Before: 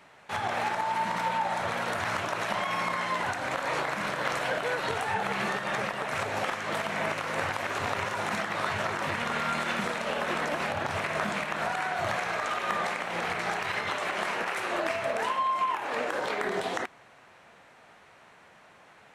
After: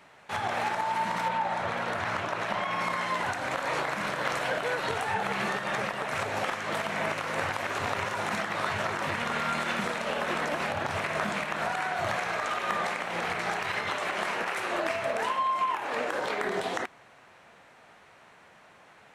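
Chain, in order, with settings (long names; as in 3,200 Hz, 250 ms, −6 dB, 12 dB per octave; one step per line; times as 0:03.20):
0:01.28–0:02.81: high-shelf EQ 6,300 Hz −11 dB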